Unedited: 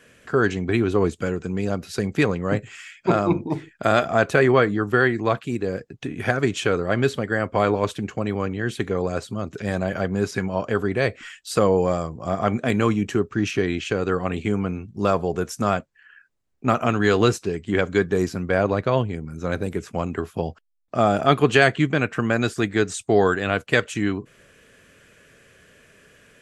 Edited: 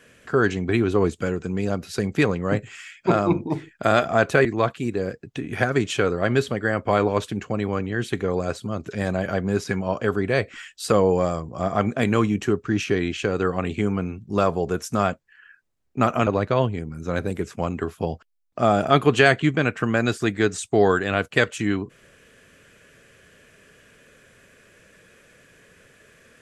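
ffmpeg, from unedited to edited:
ffmpeg -i in.wav -filter_complex "[0:a]asplit=3[link_01][link_02][link_03];[link_01]atrim=end=4.452[link_04];[link_02]atrim=start=5.118:end=16.942[link_05];[link_03]atrim=start=18.628[link_06];[link_04][link_05]acrossfade=duration=0.004:curve1=hsin:curve2=hsin[link_07];[link_07][link_06]acrossfade=duration=0.004:curve1=hsin:curve2=hsin" out.wav

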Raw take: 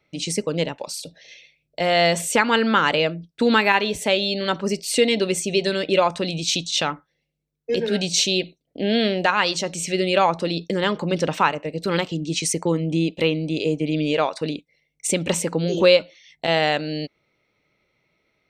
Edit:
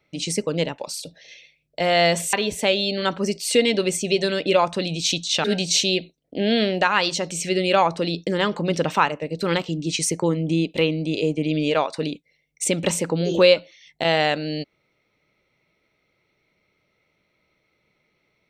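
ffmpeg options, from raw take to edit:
ffmpeg -i in.wav -filter_complex "[0:a]asplit=3[link_01][link_02][link_03];[link_01]atrim=end=2.332[link_04];[link_02]atrim=start=3.758:end=6.872[link_05];[link_03]atrim=start=7.868[link_06];[link_04][link_05]acrossfade=duration=0.004:curve1=hsin:curve2=hsin[link_07];[link_07][link_06]acrossfade=duration=0.004:curve1=hsin:curve2=hsin" out.wav

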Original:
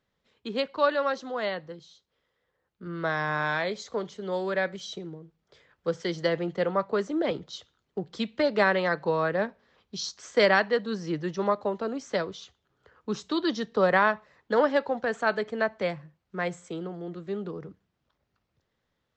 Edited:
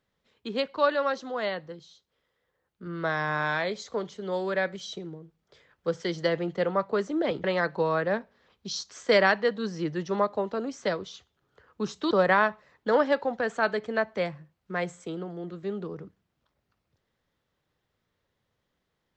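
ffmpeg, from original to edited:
ffmpeg -i in.wav -filter_complex "[0:a]asplit=3[link_01][link_02][link_03];[link_01]atrim=end=7.442[link_04];[link_02]atrim=start=8.718:end=13.392[link_05];[link_03]atrim=start=13.748[link_06];[link_04][link_05]acrossfade=duration=0.004:curve1=hsin:curve2=hsin[link_07];[link_07][link_06]acrossfade=duration=0.004:curve1=hsin:curve2=hsin" out.wav

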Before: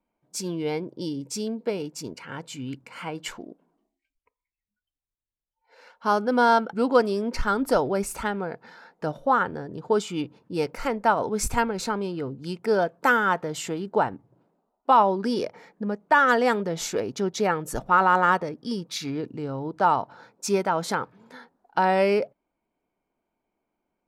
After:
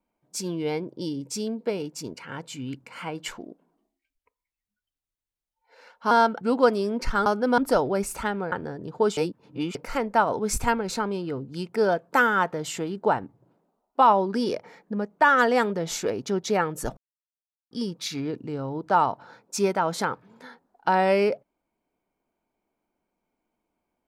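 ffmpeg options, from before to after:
ffmpeg -i in.wav -filter_complex "[0:a]asplit=9[link_01][link_02][link_03][link_04][link_05][link_06][link_07][link_08][link_09];[link_01]atrim=end=6.112[link_10];[link_02]atrim=start=6.428:end=7.582[link_11];[link_03]atrim=start=6.108:end=6.432[link_12];[link_04]atrim=start=7.578:end=8.522[link_13];[link_05]atrim=start=9.418:end=10.072[link_14];[link_06]atrim=start=10.068:end=10.652,asetpts=PTS-STARTPTS,areverse[link_15];[link_07]atrim=start=10.648:end=17.87,asetpts=PTS-STARTPTS,afade=type=out:start_time=7.218:duration=0.004:curve=hsin[link_16];[link_08]atrim=start=17.87:end=18.61,asetpts=PTS-STARTPTS,volume=0[link_17];[link_09]atrim=start=18.61,asetpts=PTS-STARTPTS,afade=type=in:duration=0.004:curve=hsin[link_18];[link_10][link_11]acrossfade=duration=0.004:curve1=hsin:curve2=hsin[link_19];[link_19][link_12]acrossfade=duration=0.004:curve1=hsin:curve2=hsin[link_20];[link_20][link_13]acrossfade=duration=0.004:curve1=hsin:curve2=hsin[link_21];[link_21][link_14]acrossfade=duration=0.004:curve1=hsin:curve2=hsin[link_22];[link_22][link_15]acrossfade=duration=0.004:curve1=hsin:curve2=hsin[link_23];[link_16][link_17][link_18]concat=n=3:v=0:a=1[link_24];[link_23][link_24]acrossfade=duration=0.004:curve1=hsin:curve2=hsin" out.wav

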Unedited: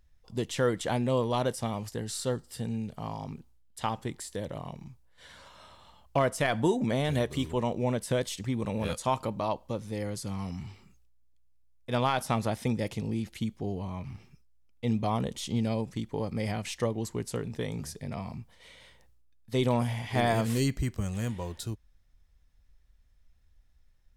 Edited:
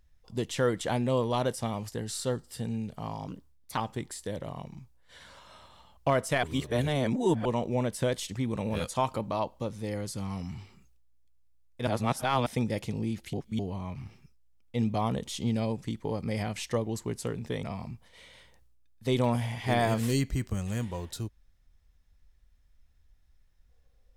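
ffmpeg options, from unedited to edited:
ffmpeg -i in.wav -filter_complex "[0:a]asplit=10[link_01][link_02][link_03][link_04][link_05][link_06][link_07][link_08][link_09][link_10];[link_01]atrim=end=3.284[link_11];[link_02]atrim=start=3.28:end=3.86,asetpts=PTS-STARTPTS,asetrate=52038,aresample=44100,atrim=end_sample=21676,asetpts=PTS-STARTPTS[link_12];[link_03]atrim=start=3.856:end=6.522[link_13];[link_04]atrim=start=6.518:end=7.542,asetpts=PTS-STARTPTS,areverse[link_14];[link_05]atrim=start=7.538:end=11.962[link_15];[link_06]atrim=start=11.958:end=12.552,asetpts=PTS-STARTPTS,areverse[link_16];[link_07]atrim=start=12.548:end=13.422[link_17];[link_08]atrim=start=13.418:end=13.682,asetpts=PTS-STARTPTS,areverse[link_18];[link_09]atrim=start=13.678:end=17.722[link_19];[link_10]atrim=start=18.098[link_20];[link_11][link_12]acrossfade=duration=0.004:curve1=hsin:curve2=hsin[link_21];[link_21][link_13]acrossfade=duration=0.004:curve1=hsin:curve2=hsin[link_22];[link_22][link_14]acrossfade=duration=0.004:curve1=hsin:curve2=hsin[link_23];[link_23][link_15]acrossfade=duration=0.004:curve1=hsin:curve2=hsin[link_24];[link_24][link_16]acrossfade=duration=0.004:curve1=hsin:curve2=hsin[link_25];[link_25][link_17]acrossfade=duration=0.004:curve1=hsin:curve2=hsin[link_26];[link_26][link_18]acrossfade=duration=0.004:curve1=hsin:curve2=hsin[link_27];[link_27][link_19]acrossfade=duration=0.004:curve1=hsin:curve2=hsin[link_28];[link_28][link_20]acrossfade=duration=0.004:curve1=hsin:curve2=hsin" out.wav

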